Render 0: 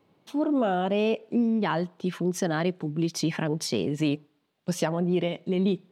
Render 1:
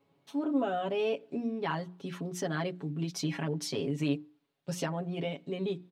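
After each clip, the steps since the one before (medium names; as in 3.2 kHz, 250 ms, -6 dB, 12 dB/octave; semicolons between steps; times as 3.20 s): hum notches 60/120/180/240/300/360 Hz; comb 7.2 ms, depth 85%; trim -8 dB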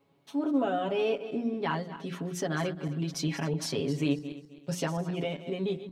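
backward echo that repeats 131 ms, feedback 51%, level -12 dB; trim +2 dB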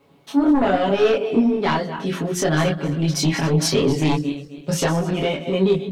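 sine folder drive 7 dB, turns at -15.5 dBFS; chorus voices 4, 0.99 Hz, delay 23 ms, depth 3 ms; trim +5.5 dB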